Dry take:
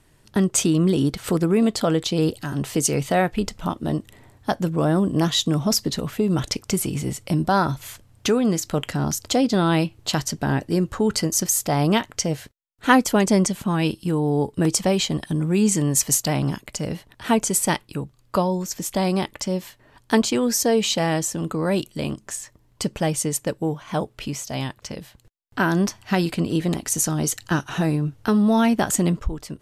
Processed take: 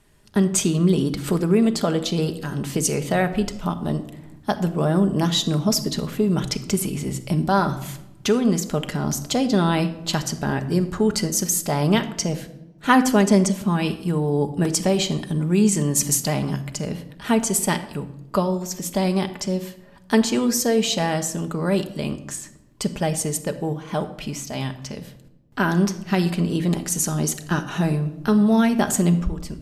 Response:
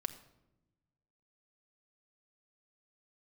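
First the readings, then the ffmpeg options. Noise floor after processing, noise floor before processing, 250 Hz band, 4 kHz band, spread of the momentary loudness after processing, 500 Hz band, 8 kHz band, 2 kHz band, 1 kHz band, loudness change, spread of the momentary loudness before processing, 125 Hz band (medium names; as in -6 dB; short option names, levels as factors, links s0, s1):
-47 dBFS, -58 dBFS, +0.5 dB, -0.5 dB, 11 LU, 0.0 dB, -0.5 dB, -0.5 dB, -0.5 dB, 0.0 dB, 10 LU, +1.0 dB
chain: -filter_complex "[1:a]atrim=start_sample=2205[s0];[0:a][s0]afir=irnorm=-1:irlink=0"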